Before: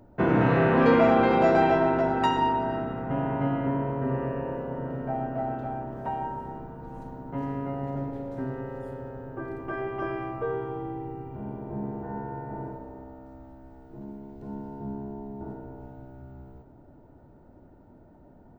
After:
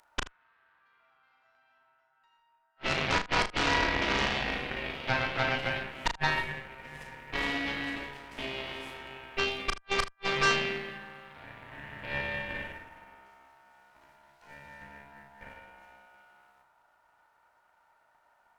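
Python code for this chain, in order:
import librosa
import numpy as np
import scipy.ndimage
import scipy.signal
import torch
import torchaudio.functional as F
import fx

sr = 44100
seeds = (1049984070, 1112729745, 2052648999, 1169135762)

p1 = scipy.signal.sosfilt(scipy.signal.butter(4, 1100.0, 'highpass', fs=sr, output='sos'), x)
p2 = fx.env_lowpass_down(p1, sr, base_hz=1700.0, full_db=-19.5)
p3 = fx.over_compress(p2, sr, threshold_db=-33.0, ratio=-1.0)
p4 = p2 + F.gain(torch.from_numpy(p3), 2.5).numpy()
p5 = fx.gate_flip(p4, sr, shuts_db=-23.0, range_db=-40)
p6 = fx.cheby_harmonics(p5, sr, harmonics=(6, 7), levels_db=(-8, -14), full_scale_db=-22.0)
p7 = p6 + fx.room_early_taps(p6, sr, ms=(35, 78), db=(-6.5, -17.0), dry=0)
y = F.gain(torch.from_numpy(p7), 4.5).numpy()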